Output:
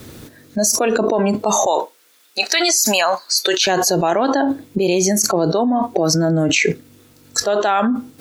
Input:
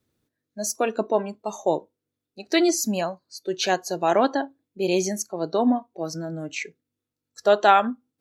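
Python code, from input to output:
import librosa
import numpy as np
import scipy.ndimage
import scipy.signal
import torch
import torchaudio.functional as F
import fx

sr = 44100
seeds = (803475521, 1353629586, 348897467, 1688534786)

y = fx.highpass(x, sr, hz=1100.0, slope=12, at=(1.66, 3.67))
y = fx.env_flatten(y, sr, amount_pct=100)
y = y * librosa.db_to_amplitude(-3.0)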